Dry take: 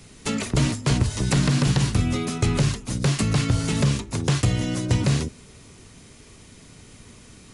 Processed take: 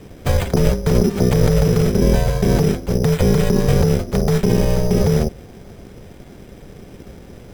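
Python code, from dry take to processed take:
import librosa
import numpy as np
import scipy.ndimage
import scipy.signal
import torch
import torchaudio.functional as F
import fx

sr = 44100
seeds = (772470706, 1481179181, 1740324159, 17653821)

p1 = x * np.sin(2.0 * np.pi * 300.0 * np.arange(len(x)) / sr)
p2 = fx.over_compress(p1, sr, threshold_db=-25.0, ratio=-0.5)
p3 = p1 + (p2 * 10.0 ** (2.0 / 20.0))
p4 = fx.low_shelf(p3, sr, hz=190.0, db=11.0)
p5 = np.repeat(scipy.signal.resample_poly(p4, 1, 8), 8)[:len(p4)]
y = p5 * 10.0 ** (-1.0 / 20.0)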